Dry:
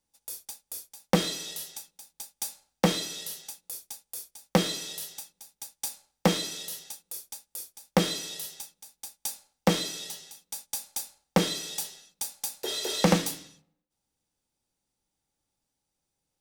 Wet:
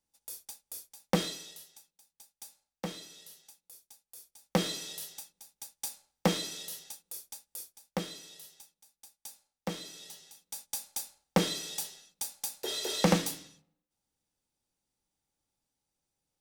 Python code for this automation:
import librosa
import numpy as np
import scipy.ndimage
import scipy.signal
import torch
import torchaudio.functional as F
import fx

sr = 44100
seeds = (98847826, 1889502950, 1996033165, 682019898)

y = fx.gain(x, sr, db=fx.line((1.22, -4.5), (1.69, -14.5), (4.01, -14.5), (4.63, -4.0), (7.61, -4.0), (8.07, -13.0), (9.78, -13.0), (10.63, -3.0)))